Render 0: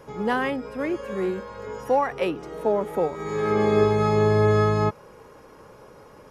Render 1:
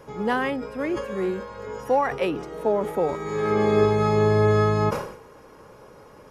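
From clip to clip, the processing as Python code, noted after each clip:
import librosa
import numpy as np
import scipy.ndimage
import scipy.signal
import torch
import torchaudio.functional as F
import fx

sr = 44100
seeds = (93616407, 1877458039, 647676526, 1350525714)

y = fx.sustainer(x, sr, db_per_s=83.0)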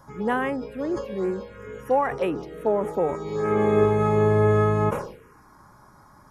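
y = fx.env_phaser(x, sr, low_hz=410.0, high_hz=4800.0, full_db=-20.0)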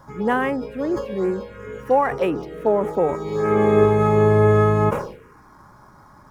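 y = scipy.signal.medfilt(x, 5)
y = y * 10.0 ** (4.0 / 20.0)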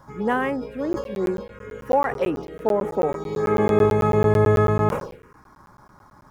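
y = fx.buffer_crackle(x, sr, first_s=0.93, period_s=0.11, block=512, kind='zero')
y = y * 10.0 ** (-2.0 / 20.0)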